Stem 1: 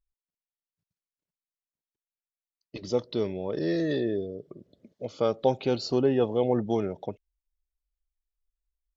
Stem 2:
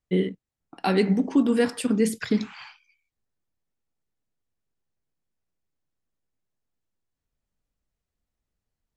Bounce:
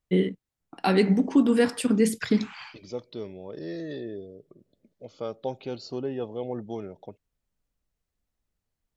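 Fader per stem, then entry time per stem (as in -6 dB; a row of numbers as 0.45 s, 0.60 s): -8.0 dB, +0.5 dB; 0.00 s, 0.00 s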